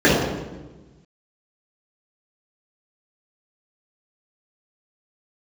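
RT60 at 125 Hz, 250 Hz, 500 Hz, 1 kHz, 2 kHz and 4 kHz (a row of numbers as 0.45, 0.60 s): 1.7, 1.5, 1.3, 1.1, 0.95, 0.85 s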